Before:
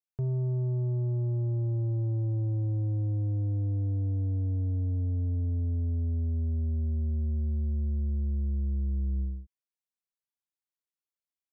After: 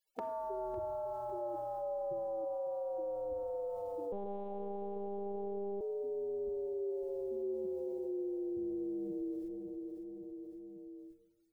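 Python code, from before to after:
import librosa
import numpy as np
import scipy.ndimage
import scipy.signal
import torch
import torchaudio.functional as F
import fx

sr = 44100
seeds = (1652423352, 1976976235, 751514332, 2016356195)

y = fx.spec_gate(x, sr, threshold_db=-25, keep='weak')
y = fx.low_shelf(y, sr, hz=400.0, db=7.0)
y = y + 0.5 * np.pad(y, (int(2.3 * sr / 1000.0), 0))[:len(y)]
y = fx.rider(y, sr, range_db=3, speed_s=0.5)
y = fx.echo_feedback(y, sr, ms=554, feedback_pct=29, wet_db=-16.0)
y = fx.room_shoebox(y, sr, seeds[0], volume_m3=3300.0, walls='furnished', distance_m=1.1)
y = fx.lpc_monotone(y, sr, seeds[1], pitch_hz=200.0, order=8, at=(4.12, 5.81))
y = fx.env_flatten(y, sr, amount_pct=70)
y = y * 10.0 ** (5.5 / 20.0)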